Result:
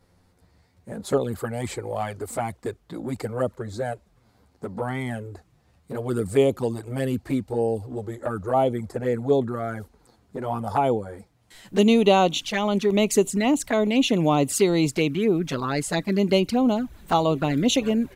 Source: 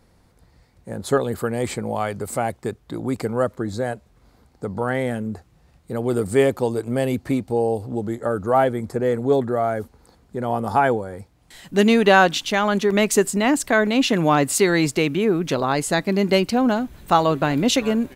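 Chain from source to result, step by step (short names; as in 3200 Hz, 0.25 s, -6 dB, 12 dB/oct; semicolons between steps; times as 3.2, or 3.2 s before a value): envelope flanger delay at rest 11.6 ms, full sweep at -15 dBFS; gain -1 dB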